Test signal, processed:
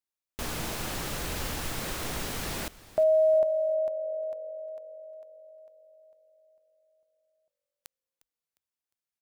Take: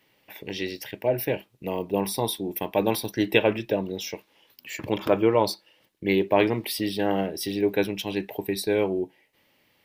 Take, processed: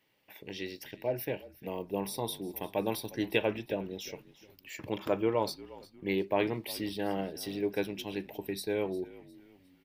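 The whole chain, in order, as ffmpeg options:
ffmpeg -i in.wav -filter_complex "[0:a]asplit=4[link_01][link_02][link_03][link_04];[link_02]adelay=355,afreqshift=-47,volume=-19dB[link_05];[link_03]adelay=710,afreqshift=-94,volume=-27.6dB[link_06];[link_04]adelay=1065,afreqshift=-141,volume=-36.3dB[link_07];[link_01][link_05][link_06][link_07]amix=inputs=4:normalize=0,volume=-8.5dB" out.wav

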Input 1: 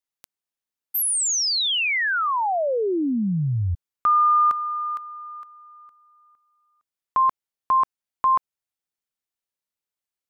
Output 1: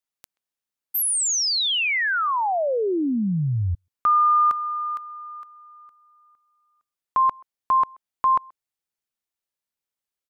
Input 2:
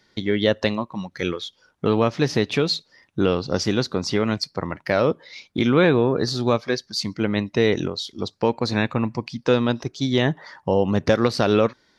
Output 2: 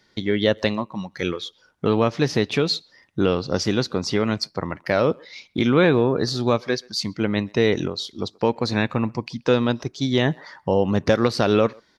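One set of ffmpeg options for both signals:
ffmpeg -i in.wav -filter_complex "[0:a]asplit=2[link_01][link_02];[link_02]adelay=130,highpass=300,lowpass=3400,asoftclip=type=hard:threshold=-13dB,volume=-27dB[link_03];[link_01][link_03]amix=inputs=2:normalize=0" out.wav

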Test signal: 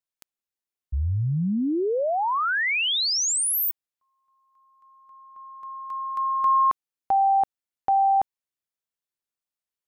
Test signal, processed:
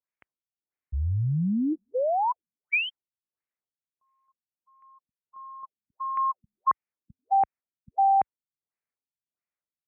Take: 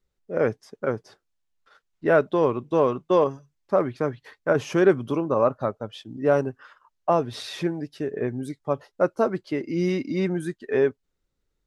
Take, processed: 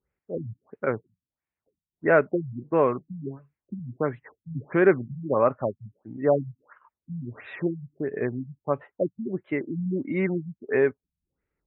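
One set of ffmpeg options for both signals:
ffmpeg -i in.wav -af "highpass=57,highshelf=frequency=2800:width_type=q:width=3:gain=-8.5,afftfilt=real='re*lt(b*sr/1024,200*pow(4100/200,0.5+0.5*sin(2*PI*1.5*pts/sr)))':imag='im*lt(b*sr/1024,200*pow(4100/200,0.5+0.5*sin(2*PI*1.5*pts/sr)))':win_size=1024:overlap=0.75,volume=-1dB" out.wav

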